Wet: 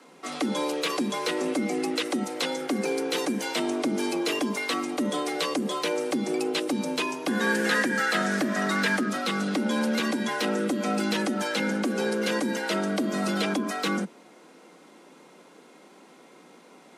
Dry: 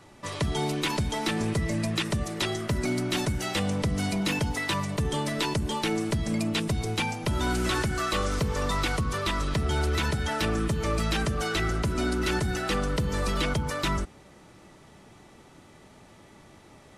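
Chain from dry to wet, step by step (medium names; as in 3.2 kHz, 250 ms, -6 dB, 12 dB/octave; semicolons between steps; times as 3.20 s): 7.28–9.09 s: peaking EQ 1.6 kHz +14.5 dB 0.31 oct; frequency shift +150 Hz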